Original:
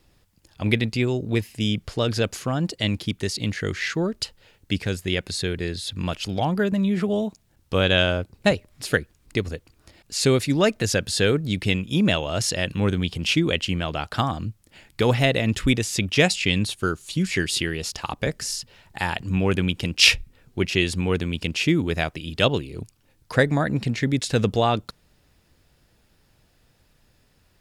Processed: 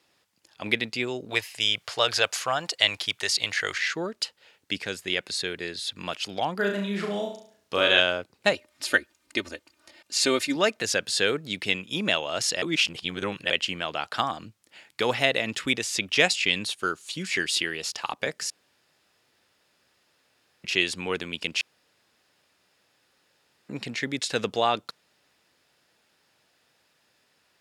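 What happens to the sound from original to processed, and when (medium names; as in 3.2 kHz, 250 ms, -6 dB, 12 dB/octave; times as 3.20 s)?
1.30–3.78 s: FFT filter 130 Hz 0 dB, 220 Hz -12 dB, 700 Hz +6 dB
6.55–8.00 s: flutter echo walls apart 6 m, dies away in 0.51 s
8.54–10.56 s: comb 3.3 ms, depth 73%
12.62–13.50 s: reverse
18.50–20.64 s: room tone
21.61–23.69 s: room tone
whole clip: frequency weighting A; trim -1 dB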